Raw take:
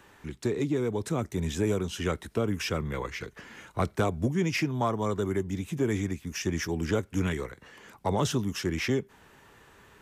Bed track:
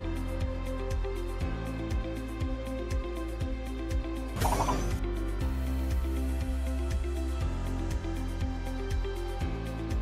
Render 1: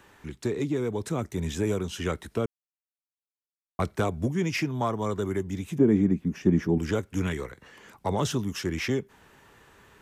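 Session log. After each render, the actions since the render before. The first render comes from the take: 2.46–3.79 s: mute; 5.78–6.78 s: FFT filter 110 Hz 0 dB, 180 Hz +12 dB, 6.3 kHz -15 dB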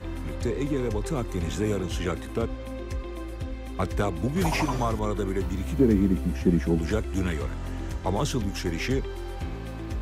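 add bed track -0.5 dB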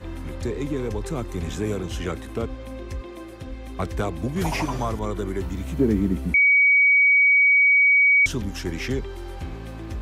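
3.01–3.47 s: high-pass 110 Hz; 6.34–8.26 s: bleep 2.26 kHz -13 dBFS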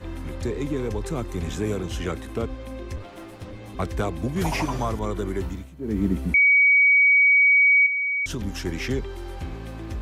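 2.96–3.75 s: comb filter that takes the minimum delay 9.9 ms; 5.46–6.05 s: dip -16.5 dB, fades 0.24 s; 7.86–8.45 s: compression, threshold -24 dBFS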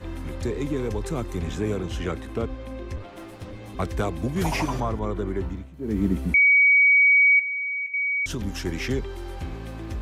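1.38–3.17 s: treble shelf 5.9 kHz -7.5 dB; 4.80–5.74 s: low-pass 2 kHz 6 dB/octave; 7.39–7.94 s: feedback comb 130 Hz, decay 0.17 s, mix 90%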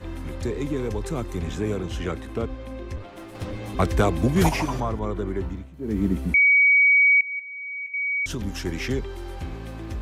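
3.35–4.49 s: gain +6 dB; 7.21–8.16 s: fade in, from -21 dB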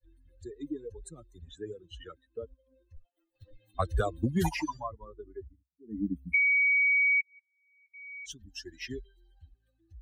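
expander on every frequency bin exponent 3; compression 5:1, threshold -24 dBFS, peak gain reduction 8 dB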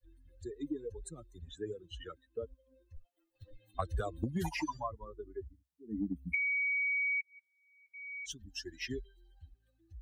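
compression 10:1, threshold -31 dBFS, peak gain reduction 9 dB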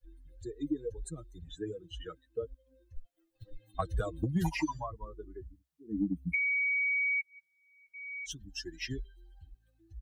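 bass shelf 180 Hz +6.5 dB; comb 6.3 ms, depth 58%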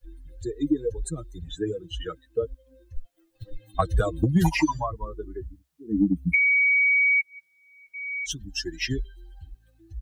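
trim +10 dB

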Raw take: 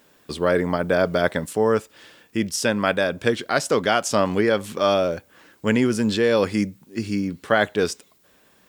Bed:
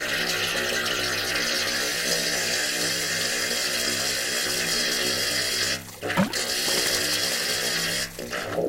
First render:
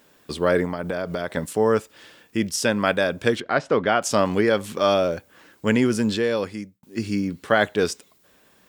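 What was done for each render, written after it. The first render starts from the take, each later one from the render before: 0.65–1.37 s: compression 5:1, threshold -23 dBFS; 3.40–4.02 s: low-pass 2.5 kHz; 5.99–6.83 s: fade out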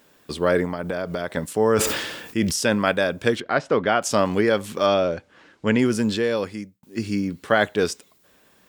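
1.56–2.89 s: decay stretcher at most 45 dB/s; 4.86–5.79 s: low-pass 5.3 kHz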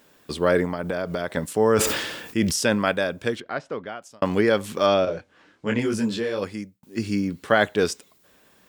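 2.59–4.22 s: fade out; 5.05–6.42 s: detune thickener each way 39 cents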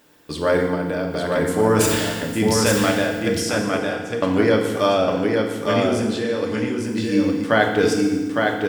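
delay 858 ms -3.5 dB; FDN reverb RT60 1.4 s, low-frequency decay 1.5×, high-frequency decay 0.9×, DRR 1.5 dB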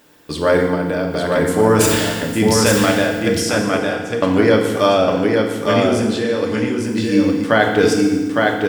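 trim +4 dB; peak limiter -2 dBFS, peak gain reduction 2 dB

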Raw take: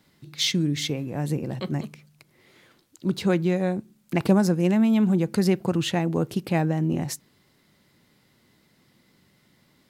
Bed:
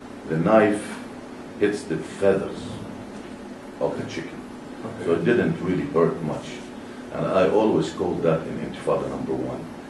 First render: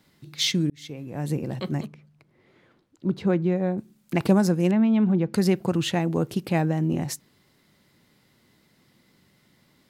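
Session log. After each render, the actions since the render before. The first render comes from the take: 0.70–1.35 s: fade in; 1.86–3.78 s: low-pass 1.2 kHz 6 dB/octave; 4.71–5.34 s: distance through air 240 m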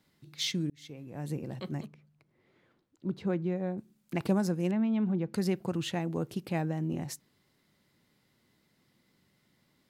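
trim -8.5 dB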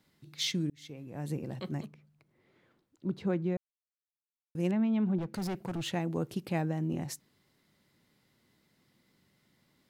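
3.57–4.55 s: mute; 5.18–5.92 s: hard clipper -31.5 dBFS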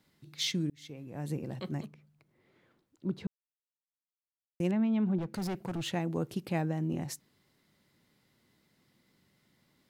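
3.27–4.60 s: mute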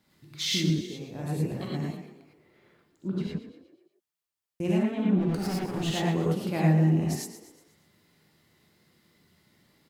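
frequency-shifting echo 121 ms, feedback 47%, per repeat +37 Hz, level -12 dB; gated-style reverb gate 130 ms rising, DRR -4.5 dB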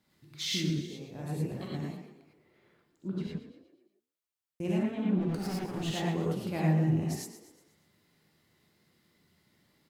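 flange 1.9 Hz, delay 8.9 ms, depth 9.4 ms, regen -86%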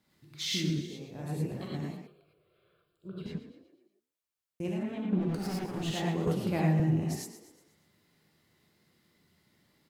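2.07–3.26 s: static phaser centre 1.3 kHz, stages 8; 4.68–5.13 s: compression 2:1, threshold -33 dBFS; 6.27–6.80 s: three bands compressed up and down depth 70%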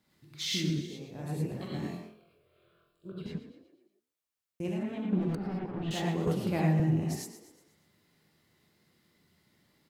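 1.73–3.12 s: flutter echo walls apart 4 m, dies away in 0.36 s; 5.35–5.91 s: distance through air 450 m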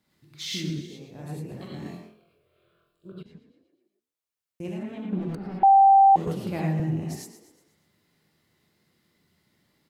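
1.39–1.86 s: compression 2.5:1, threshold -33 dBFS; 3.23–4.61 s: fade in, from -13.5 dB; 5.63–6.16 s: bleep 783 Hz -11.5 dBFS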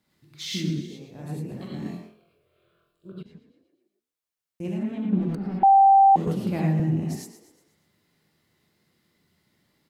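dynamic bell 220 Hz, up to +7 dB, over -45 dBFS, Q 1.6

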